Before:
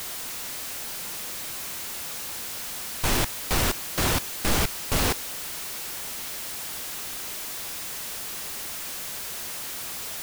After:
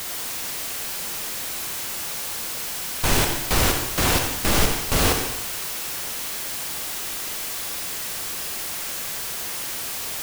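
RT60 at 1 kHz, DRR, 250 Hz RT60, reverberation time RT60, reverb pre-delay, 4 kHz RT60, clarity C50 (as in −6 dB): 0.90 s, 3.0 dB, 0.90 s, 0.90 s, 40 ms, 0.90 s, 4.0 dB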